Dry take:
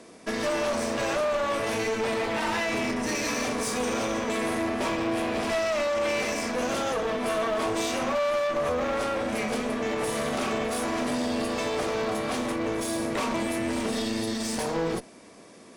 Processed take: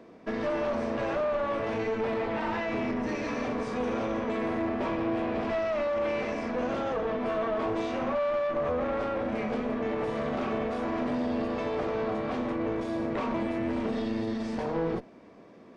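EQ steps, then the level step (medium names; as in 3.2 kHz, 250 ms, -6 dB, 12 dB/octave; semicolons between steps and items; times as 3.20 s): tape spacing loss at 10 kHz 33 dB; 0.0 dB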